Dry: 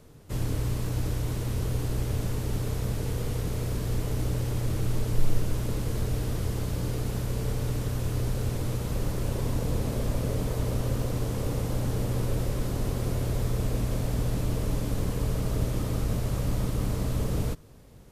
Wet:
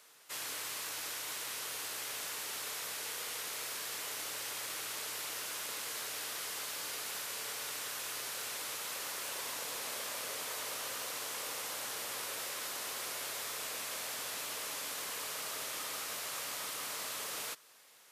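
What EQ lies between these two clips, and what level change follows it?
high-pass filter 1,400 Hz 12 dB per octave
+4.5 dB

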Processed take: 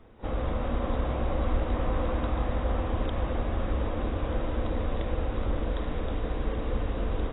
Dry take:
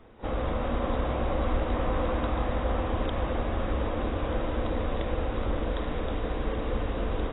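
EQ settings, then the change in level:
low-shelf EQ 210 Hz +4.5 dB
−3.0 dB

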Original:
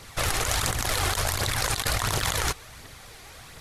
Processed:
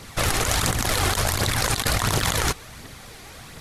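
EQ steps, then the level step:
parametric band 220 Hz +6.5 dB 1.4 octaves
+3.0 dB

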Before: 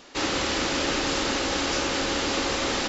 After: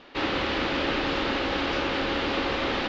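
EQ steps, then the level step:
low-pass filter 3,700 Hz 24 dB per octave
0.0 dB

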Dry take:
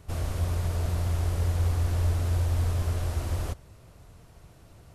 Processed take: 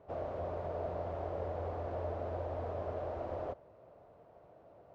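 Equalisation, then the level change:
resonant band-pass 600 Hz, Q 2.5
high-frequency loss of the air 120 metres
+6.0 dB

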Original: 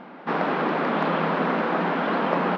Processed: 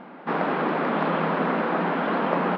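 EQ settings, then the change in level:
high-frequency loss of the air 130 metres
0.0 dB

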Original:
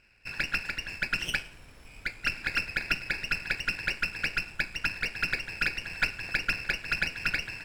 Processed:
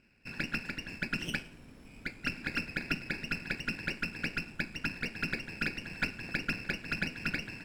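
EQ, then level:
parametric band 230 Hz +15 dB 1.7 octaves
−6.5 dB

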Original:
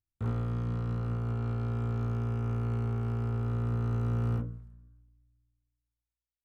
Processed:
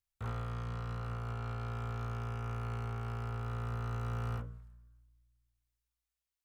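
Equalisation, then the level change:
parametric band 110 Hz −4 dB 1.2 octaves
parametric band 280 Hz −13 dB 1.5 octaves
low-shelf EQ 420 Hz −4 dB
+3.0 dB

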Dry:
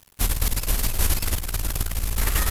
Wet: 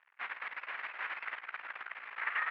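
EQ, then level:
high-pass filter 1,300 Hz 12 dB per octave
Butterworth low-pass 2,100 Hz 36 dB per octave
spectral tilt +3 dB per octave
−1.0 dB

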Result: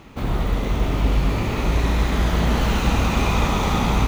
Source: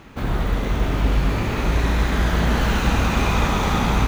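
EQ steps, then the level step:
parametric band 1,600 Hz −6.5 dB 0.34 octaves
0.0 dB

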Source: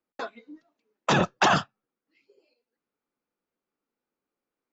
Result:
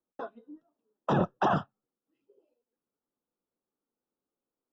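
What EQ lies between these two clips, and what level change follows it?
moving average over 20 samples
−2.0 dB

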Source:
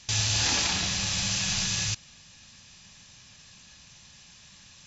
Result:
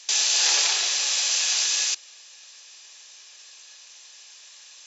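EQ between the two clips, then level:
Butterworth high-pass 360 Hz 96 dB per octave
high-shelf EQ 3,100 Hz +8 dB
0.0 dB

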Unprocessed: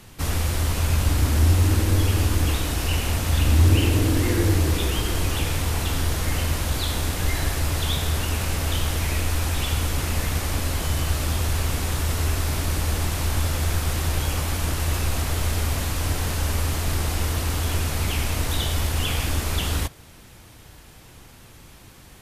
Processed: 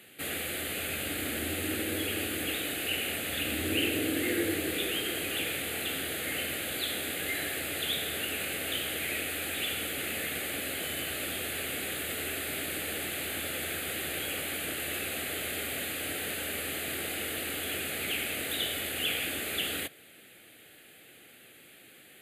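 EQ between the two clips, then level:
high-pass filter 380 Hz 12 dB per octave
phaser with its sweep stopped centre 2,400 Hz, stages 4
0.0 dB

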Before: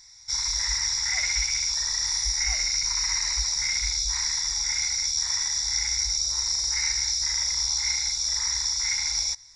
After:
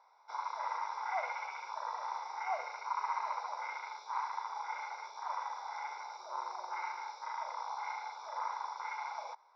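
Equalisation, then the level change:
Butterworth high-pass 330 Hz 48 dB per octave
low-pass filter 1,600 Hz 24 dB per octave
phaser with its sweep stopped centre 760 Hz, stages 4
+11.0 dB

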